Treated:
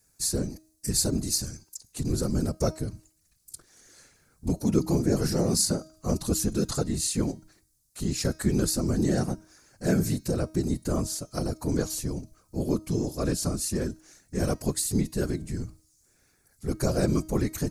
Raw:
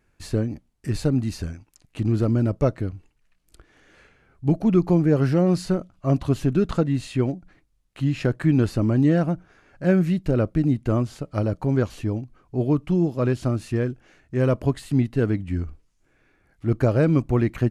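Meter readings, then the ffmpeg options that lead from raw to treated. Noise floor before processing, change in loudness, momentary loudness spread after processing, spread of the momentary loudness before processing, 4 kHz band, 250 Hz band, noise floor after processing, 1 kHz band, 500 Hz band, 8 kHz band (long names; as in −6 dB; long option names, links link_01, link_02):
−66 dBFS, −5.0 dB, 12 LU, 11 LU, +7.5 dB, −6.0 dB, −67 dBFS, −5.0 dB, −6.0 dB, can't be measured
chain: -af "afftfilt=real='hypot(re,im)*cos(2*PI*random(0))':imag='hypot(re,im)*sin(2*PI*random(1))':win_size=512:overlap=0.75,aexciter=amount=12.8:drive=4.4:freq=4400,bandreject=frequency=315.2:width_type=h:width=4,bandreject=frequency=630.4:width_type=h:width=4,bandreject=frequency=945.6:width_type=h:width=4,bandreject=frequency=1260.8:width_type=h:width=4,bandreject=frequency=1576:width_type=h:width=4,bandreject=frequency=1891.2:width_type=h:width=4,bandreject=frequency=2206.4:width_type=h:width=4,bandreject=frequency=2521.6:width_type=h:width=4,bandreject=frequency=2836.8:width_type=h:width=4,bandreject=frequency=3152:width_type=h:width=4,bandreject=frequency=3467.2:width_type=h:width=4,bandreject=frequency=3782.4:width_type=h:width=4,bandreject=frequency=4097.6:width_type=h:width=4,bandreject=frequency=4412.8:width_type=h:width=4,bandreject=frequency=4728:width_type=h:width=4,bandreject=frequency=5043.2:width_type=h:width=4,bandreject=frequency=5358.4:width_type=h:width=4,bandreject=frequency=5673.6:width_type=h:width=4,bandreject=frequency=5988.8:width_type=h:width=4,bandreject=frequency=6304:width_type=h:width=4,bandreject=frequency=6619.2:width_type=h:width=4,bandreject=frequency=6934.4:width_type=h:width=4"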